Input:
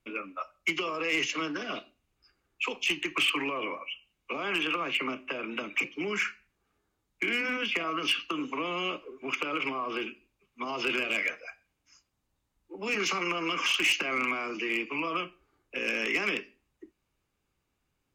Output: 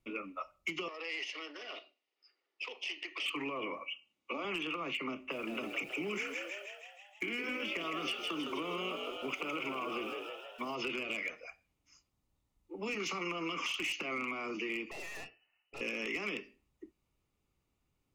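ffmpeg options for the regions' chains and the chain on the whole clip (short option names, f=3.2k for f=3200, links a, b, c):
-filter_complex "[0:a]asettb=1/sr,asplit=3[a][b][c];[a]atrim=end=0.884[d];[b]atrim=start=0.88:end=3.26,asetpts=PTS-STARTPTS,afade=t=in:d=0.004:c=qsin,afade=t=out:st=2.376:d=0.004:c=qsin,acompressor=threshold=-42dB:ratio=1.5:attack=3.2:release=140:knee=1:detection=peak,aeval=exprs='(tanh(28.2*val(0)+0.55)-tanh(0.55))/28.2':c=same,highpass=f=390:w=0.5412,highpass=f=390:w=1.3066,equalizer=f=1.2k:t=q:w=4:g=-3,equalizer=f=1.9k:t=q:w=4:g=7,equalizer=f=3k:t=q:w=4:g=5,equalizer=f=4.9k:t=q:w=4:g=6,equalizer=f=7.2k:t=q:w=4:g=-10,lowpass=f=8k:w=0.5412,lowpass=f=8k:w=1.3066[e];[c]atrim=start=3.256[f];[d][e]acrossfade=d=0.004:c1=hsin:c2=qsin[g];[g][f]acrossfade=d=0.004:c1=qsin:c2=hsin,asettb=1/sr,asplit=3[h][i][j];[h]atrim=end=3.854[k];[i]atrim=start=3.85:end=4.45,asetpts=PTS-STARTPTS,afade=t=in:d=0.004:c=qsin,afade=t=out:st=0.596:d=0.004:c=qsin,highpass=220,lowpass=7.7k,aecho=1:1:3.5:0.35,atrim=end_sample=26460[l];[j]atrim=start=4.446[m];[k][l]acrossfade=d=0.004:c1=hsin:c2=qsin[n];[n][m]acrossfade=d=0.004:c1=qsin:c2=hsin,asettb=1/sr,asplit=3[o][p][q];[o]atrim=end=5.314[r];[p]atrim=start=5.31:end=10.75,asetpts=PTS-STARTPTS,afade=t=in:d=0.004:c=qsin,afade=t=out:st=5.436:d=0.004:c=qsin,aeval=exprs='val(0)*gte(abs(val(0)),0.00355)':c=same,asplit=9[s][t][u][v][w][x][y][z][aa];[t]adelay=159,afreqshift=65,volume=-6dB[ab];[u]adelay=318,afreqshift=130,volume=-10.4dB[ac];[v]adelay=477,afreqshift=195,volume=-14.9dB[ad];[w]adelay=636,afreqshift=260,volume=-19.3dB[ae];[x]adelay=795,afreqshift=325,volume=-23.7dB[af];[y]adelay=954,afreqshift=390,volume=-28.2dB[ag];[z]adelay=1113,afreqshift=455,volume=-32.6dB[ah];[aa]adelay=1272,afreqshift=520,volume=-37.1dB[ai];[s][ab][ac][ad][ae][af][ag][ah][ai]amix=inputs=9:normalize=0,atrim=end_sample=239904[aj];[q]atrim=start=10.746[ak];[r][aj]acrossfade=d=0.004:c1=hsin:c2=qsin[al];[al][ak]acrossfade=d=0.004:c1=qsin:c2=hsin,asettb=1/sr,asplit=3[am][an][ao];[am]atrim=end=14.914[ap];[an]atrim=start=14.91:end=15.81,asetpts=PTS-STARTPTS,afade=t=in:d=0.004:c=qsin,afade=t=out:st=0.896:d=0.004:c=qsin,lowpass=f=2.6k:t=q:w=0.5098,lowpass=f=2.6k:t=q:w=0.6013,lowpass=f=2.6k:t=q:w=0.9,lowpass=f=2.6k:t=q:w=2.563,afreqshift=-3000,aeval=exprs='(tanh(89.1*val(0)+0.45)-tanh(0.45))/89.1':c=same[aq];[ao]atrim=start=15.806[ar];[ap][aq]acrossfade=d=0.004:c1=hsin:c2=qsin[as];[as][ar]acrossfade=d=0.004:c1=qsin:c2=hsin,lowshelf=f=360:g=4.5,bandreject=f=1.6k:w=5.9,acompressor=threshold=-30dB:ratio=6,volume=-4dB"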